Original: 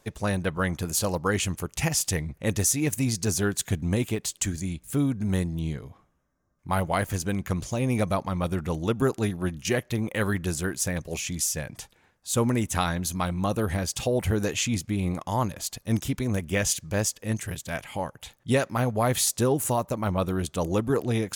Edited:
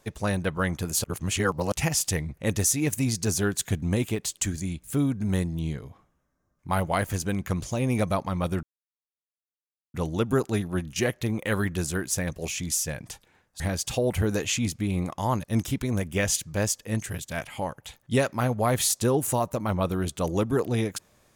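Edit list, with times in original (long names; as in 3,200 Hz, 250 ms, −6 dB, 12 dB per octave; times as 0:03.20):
0:01.04–0:01.72: reverse
0:08.63: splice in silence 1.31 s
0:12.29–0:13.69: remove
0:15.53–0:15.81: remove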